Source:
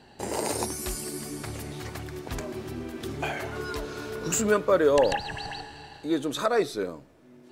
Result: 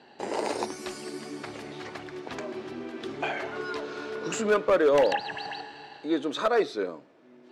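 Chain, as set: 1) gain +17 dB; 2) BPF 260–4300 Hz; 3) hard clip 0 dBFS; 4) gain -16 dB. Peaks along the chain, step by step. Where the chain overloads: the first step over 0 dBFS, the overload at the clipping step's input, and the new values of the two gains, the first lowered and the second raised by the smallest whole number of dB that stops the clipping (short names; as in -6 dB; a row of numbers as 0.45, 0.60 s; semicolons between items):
+5.5, +6.0, 0.0, -16.0 dBFS; step 1, 6.0 dB; step 1 +11 dB, step 4 -10 dB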